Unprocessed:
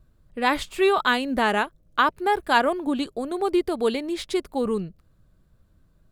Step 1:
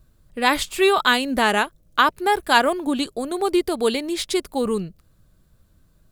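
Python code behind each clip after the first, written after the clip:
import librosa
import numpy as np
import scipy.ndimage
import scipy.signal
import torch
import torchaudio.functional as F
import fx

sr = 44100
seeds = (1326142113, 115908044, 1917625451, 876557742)

y = fx.high_shelf(x, sr, hz=3600.0, db=9.5)
y = y * 10.0 ** (2.0 / 20.0)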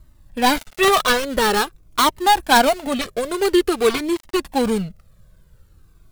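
y = fx.dead_time(x, sr, dead_ms=0.2)
y = fx.comb_cascade(y, sr, direction='falling', hz=0.48)
y = y * 10.0 ** (8.5 / 20.0)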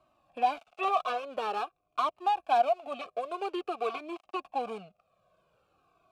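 y = fx.vowel_filter(x, sr, vowel='a')
y = fx.band_squash(y, sr, depth_pct=40)
y = y * 10.0 ** (-2.5 / 20.0)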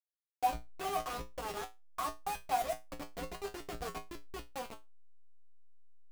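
y = fx.delta_hold(x, sr, step_db=-27.5)
y = fx.comb_fb(y, sr, f0_hz=58.0, decay_s=0.21, harmonics='odd', damping=0.0, mix_pct=90)
y = y * 10.0 ** (1.0 / 20.0)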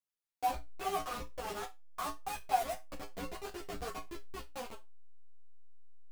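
y = fx.ensemble(x, sr)
y = y * 10.0 ** (3.0 / 20.0)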